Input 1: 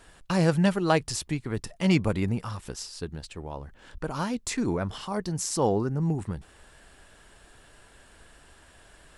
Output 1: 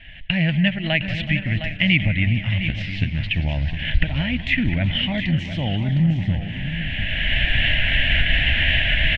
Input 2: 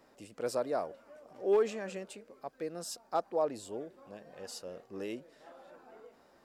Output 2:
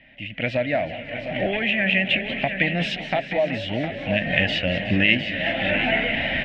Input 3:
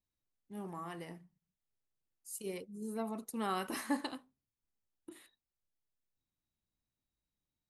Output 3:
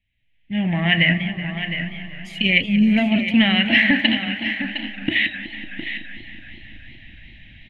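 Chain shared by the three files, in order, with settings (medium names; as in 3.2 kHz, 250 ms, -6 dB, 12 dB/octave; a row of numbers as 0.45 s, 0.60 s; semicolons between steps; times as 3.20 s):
recorder AGC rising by 22 dB/s; FFT filter 110 Hz 0 dB, 280 Hz -9 dB, 430 Hz -28 dB, 630 Hz -8 dB, 1.2 kHz -29 dB, 1.9 kHz +9 dB, 3.1 kHz +10 dB, 4.8 kHz -17 dB, 12 kHz -20 dB; in parallel at -2.5 dB: compression, threshold -36 dBFS; on the sum: distance through air 250 m; on a send: delay 710 ms -10 dB; on the sum: modulated delay 187 ms, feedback 79%, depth 193 cents, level -14.5 dB; peak normalisation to -1.5 dBFS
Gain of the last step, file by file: +6.5 dB, +11.0 dB, +12.5 dB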